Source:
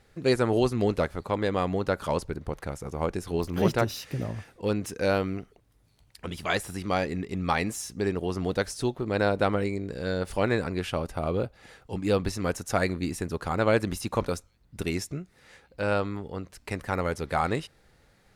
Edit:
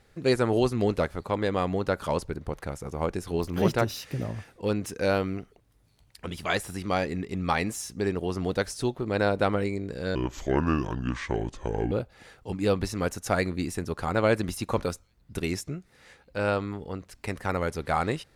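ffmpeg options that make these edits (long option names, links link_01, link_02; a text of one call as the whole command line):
ffmpeg -i in.wav -filter_complex "[0:a]asplit=3[link_01][link_02][link_03];[link_01]atrim=end=10.154[link_04];[link_02]atrim=start=10.15:end=11.35,asetpts=PTS-STARTPTS,asetrate=29988,aresample=44100[link_05];[link_03]atrim=start=11.346[link_06];[link_04][link_05]acrossfade=duration=0.004:curve1=hsin:curve2=hsin[link_07];[link_07][link_06]acrossfade=duration=0.004:curve1=hsin:curve2=hsin" out.wav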